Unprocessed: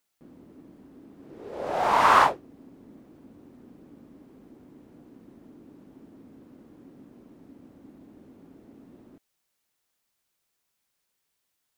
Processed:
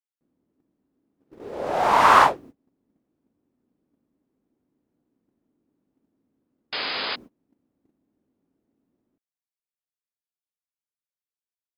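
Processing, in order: painted sound noise, 6.72–7.16, 340–5100 Hz -32 dBFS; gate -44 dBFS, range -27 dB; gain +3.5 dB

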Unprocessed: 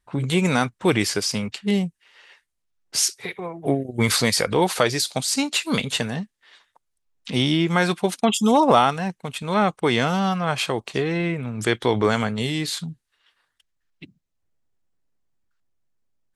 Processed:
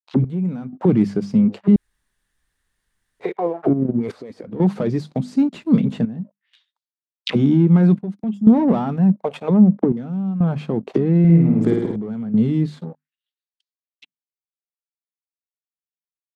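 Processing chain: 9.39–9.97 treble ducked by the level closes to 390 Hz, closed at -14.5 dBFS; notches 50/100/150/200/250 Hz; gate with hold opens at -46 dBFS; sample leveller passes 3; 3.73–4.44 negative-ratio compressor -18 dBFS, ratio -1; auto-wah 200–4500 Hz, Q 2.7, down, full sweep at -13 dBFS; step gate "x..xxxxx" 62 bpm -12 dB; 1.76–3.2 room tone; 11.19–11.96 flutter echo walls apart 9.2 m, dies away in 0.96 s; gain +4.5 dB

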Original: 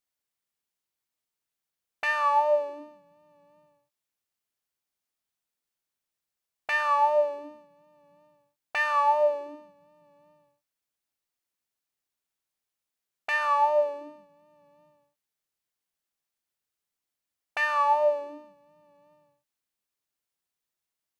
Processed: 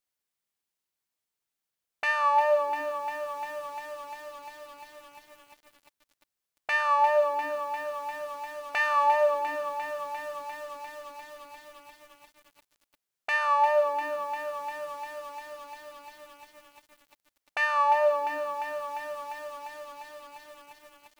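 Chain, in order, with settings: notches 60/120/180/240/300 Hz; lo-fi delay 0.349 s, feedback 80%, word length 8-bit, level -9 dB

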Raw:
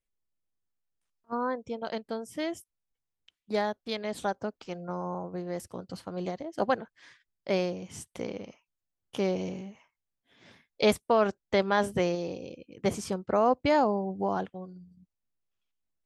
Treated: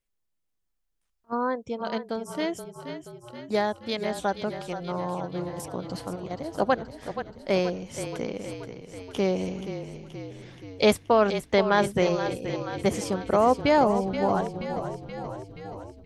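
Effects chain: 5.49–6.31 negative-ratio compressor -37 dBFS, ratio -0.5; frequency-shifting echo 0.477 s, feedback 64%, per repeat -30 Hz, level -10 dB; gain +3.5 dB

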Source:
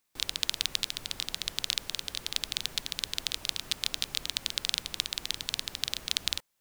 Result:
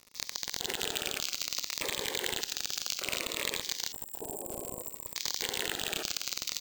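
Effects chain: echoes that change speed 0.193 s, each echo -4 st, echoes 3, each echo -6 dB; in parallel at -2.5 dB: negative-ratio compressor -39 dBFS, ratio -1; on the sum: echo with dull and thin repeats by turns 0.398 s, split 2200 Hz, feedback 57%, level -11.5 dB; LFO high-pass square 0.83 Hz 430–5300 Hz; careless resampling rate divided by 4×, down filtered, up hold; on a send: frequency-shifting echo 0.155 s, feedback 58%, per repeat -37 Hz, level -18.5 dB; on the sum: limiter -14 dBFS, peak gain reduction 9.5 dB; wavefolder -19 dBFS; 3.92–5.16 brick-wall FIR band-stop 1100–7200 Hz; crackle 89/s -37 dBFS; cascading phaser falling 0.61 Hz; gain +4 dB

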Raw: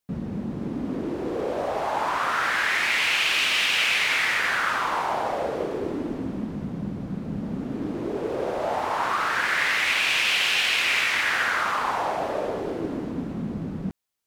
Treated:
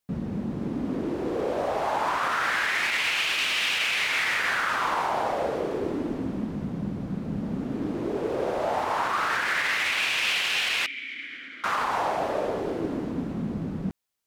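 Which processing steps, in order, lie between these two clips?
limiter -16.5 dBFS, peak gain reduction 7 dB; 10.86–11.64 vowel filter i

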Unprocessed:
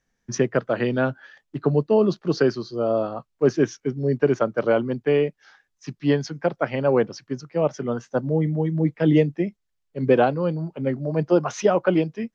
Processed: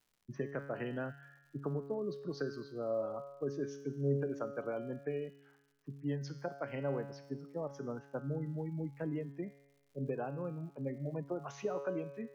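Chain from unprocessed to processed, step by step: low-pass opened by the level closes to 870 Hz, open at -16 dBFS; spectral gate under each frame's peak -30 dB strong; compressor, threshold -21 dBFS, peak gain reduction 9.5 dB; resonator 140 Hz, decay 1.1 s, harmonics all, mix 80%; crackle 180/s -59 dBFS; gain -1 dB

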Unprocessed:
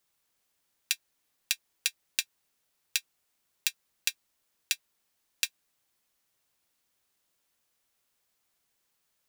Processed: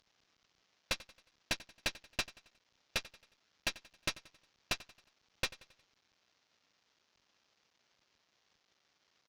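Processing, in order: CVSD 32 kbps; tube stage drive 36 dB, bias 0.65; feedback echo 90 ms, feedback 47%, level -19 dB; gain +9 dB

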